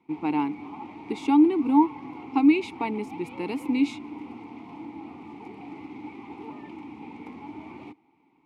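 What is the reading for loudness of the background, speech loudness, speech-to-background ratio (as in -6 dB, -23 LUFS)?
-41.0 LUFS, -24.0 LUFS, 17.0 dB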